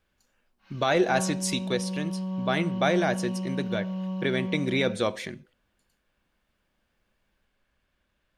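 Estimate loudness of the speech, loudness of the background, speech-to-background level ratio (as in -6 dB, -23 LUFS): -28.0 LUFS, -32.5 LUFS, 4.5 dB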